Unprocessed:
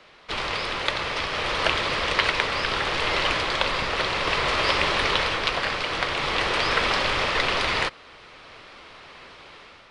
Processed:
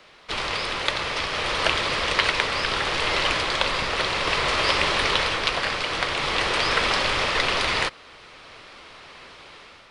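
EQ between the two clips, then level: treble shelf 7.3 kHz +9 dB; 0.0 dB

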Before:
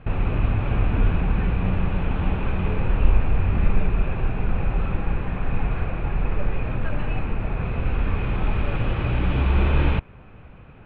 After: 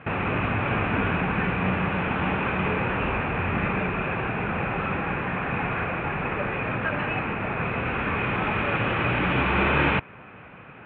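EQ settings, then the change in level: band-pass 150–3200 Hz; distance through air 130 m; peaking EQ 2.1 kHz +10 dB 2.4 oct; +2.0 dB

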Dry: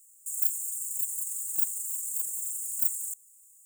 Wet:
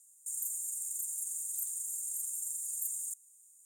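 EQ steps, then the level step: low-pass 11 kHz 12 dB/octave; band-stop 7.8 kHz, Q 11; 0.0 dB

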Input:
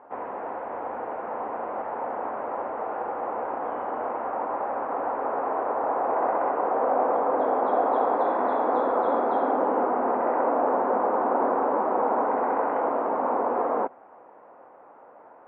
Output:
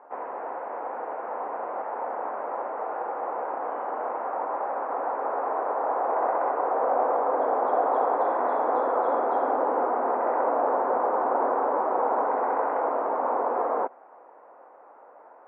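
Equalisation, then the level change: band-pass 370–2400 Hz; 0.0 dB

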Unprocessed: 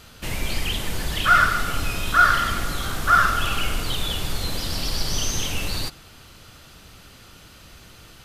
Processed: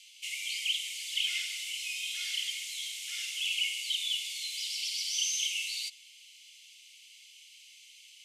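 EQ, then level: rippled Chebyshev high-pass 2.1 kHz, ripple 6 dB; distance through air 59 m; treble shelf 9.5 kHz +7 dB; +1.0 dB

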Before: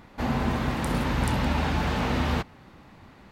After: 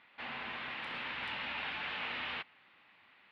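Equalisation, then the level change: band-pass filter 2.8 kHz, Q 1.6; distance through air 440 m; treble shelf 2.6 kHz +10.5 dB; 0.0 dB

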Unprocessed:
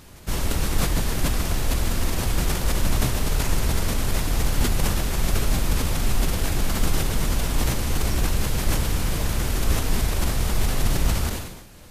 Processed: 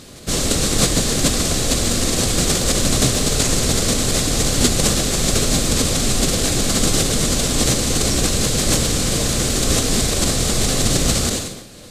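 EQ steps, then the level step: band-stop 920 Hz, Q 5.2; dynamic bell 7.1 kHz, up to +5 dB, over -46 dBFS, Q 1.3; ten-band graphic EQ 125 Hz +6 dB, 250 Hz +9 dB, 500 Hz +10 dB, 1 kHz +5 dB, 2 kHz +3 dB, 4 kHz +11 dB, 8 kHz +11 dB; -2.0 dB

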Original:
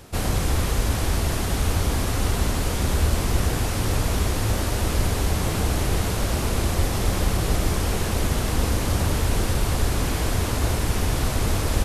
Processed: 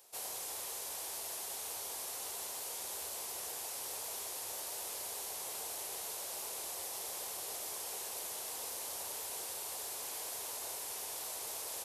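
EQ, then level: high-pass 49 Hz; differentiator; high-order bell 610 Hz +11 dB; -8.5 dB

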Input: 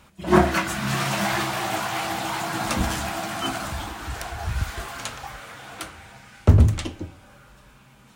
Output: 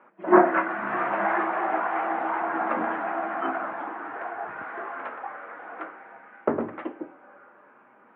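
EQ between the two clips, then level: high-pass 300 Hz 24 dB/octave; inverse Chebyshev low-pass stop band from 4.5 kHz, stop band 50 dB; distance through air 82 m; +2.5 dB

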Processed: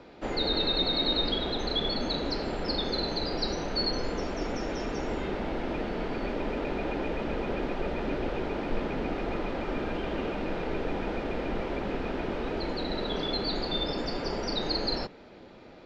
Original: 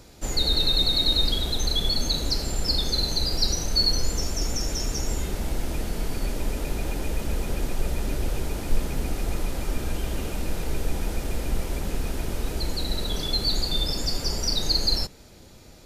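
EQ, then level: three-band isolator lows -16 dB, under 200 Hz, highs -23 dB, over 4.3 kHz; treble shelf 3.7 kHz -9.5 dB; peaking EQ 11 kHz -12.5 dB 0.92 oct; +4.5 dB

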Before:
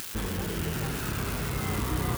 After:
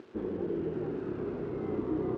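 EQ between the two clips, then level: band-pass filter 360 Hz, Q 3; distance through air 120 m; +7.0 dB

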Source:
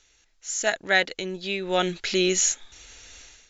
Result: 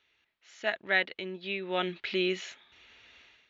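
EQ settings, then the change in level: cabinet simulation 140–3300 Hz, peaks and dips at 160 Hz -6 dB, 290 Hz -6 dB, 490 Hz -7 dB, 770 Hz -5 dB, 1.5 kHz -4 dB; -3.5 dB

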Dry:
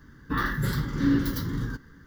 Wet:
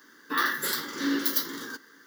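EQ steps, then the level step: high-pass 310 Hz 24 dB/octave; treble shelf 2.7 kHz +12 dB; 0.0 dB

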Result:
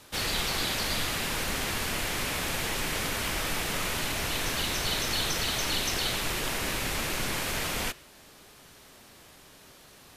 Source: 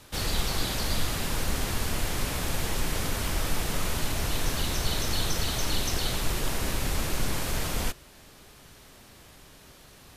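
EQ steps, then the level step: bass shelf 120 Hz -10 dB; dynamic bell 2.3 kHz, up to +5 dB, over -47 dBFS, Q 1; 0.0 dB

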